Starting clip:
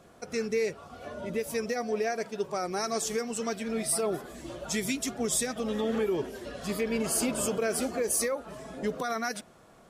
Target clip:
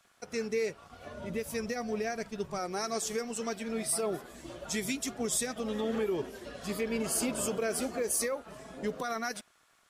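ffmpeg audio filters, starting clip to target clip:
-filter_complex "[0:a]acrossover=split=1200[s0][s1];[s0]aeval=exprs='sgn(val(0))*max(abs(val(0))-0.00224,0)':c=same[s2];[s2][s1]amix=inputs=2:normalize=0,asettb=1/sr,asplit=3[s3][s4][s5];[s3]atrim=end=0.644[s6];[s4]atrim=start=0.64:end=2.59,asetpts=PTS-STARTPTS,afade=t=in:d=0.004:c=qsin,afade=t=out:st=1.946:d=0.004:c=qsin,asubboost=boost=6.5:cutoff=200[s7];[s5]atrim=start=2.586[s8];[s6][s7]acrossfade=d=0.004:c1=hsin:c2=qsin[s9];[s9][s8]acrossfade=d=0.004:c1=qsin:c2=hsin,volume=0.75"

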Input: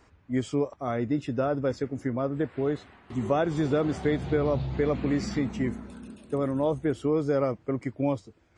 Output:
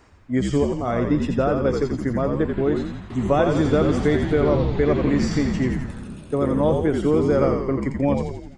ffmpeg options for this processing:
-filter_complex "[0:a]asplit=9[s0][s1][s2][s3][s4][s5][s6][s7][s8];[s1]adelay=85,afreqshift=-61,volume=0.596[s9];[s2]adelay=170,afreqshift=-122,volume=0.339[s10];[s3]adelay=255,afreqshift=-183,volume=0.193[s11];[s4]adelay=340,afreqshift=-244,volume=0.111[s12];[s5]adelay=425,afreqshift=-305,volume=0.0631[s13];[s6]adelay=510,afreqshift=-366,volume=0.0359[s14];[s7]adelay=595,afreqshift=-427,volume=0.0204[s15];[s8]adelay=680,afreqshift=-488,volume=0.0116[s16];[s0][s9][s10][s11][s12][s13][s14][s15][s16]amix=inputs=9:normalize=0,volume=1.88"

